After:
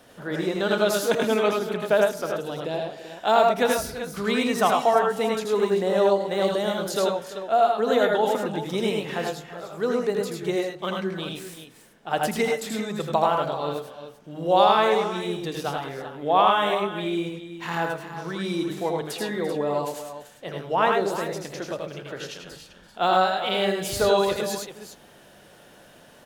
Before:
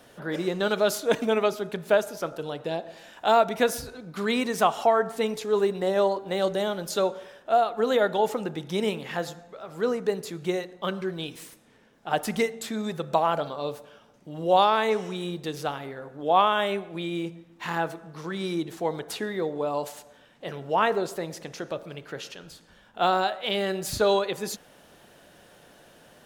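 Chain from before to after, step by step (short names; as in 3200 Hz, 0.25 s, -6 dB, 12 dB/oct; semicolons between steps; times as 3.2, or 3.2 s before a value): tapped delay 82/102/341/388 ms -4.5/-4.5/-16/-11 dB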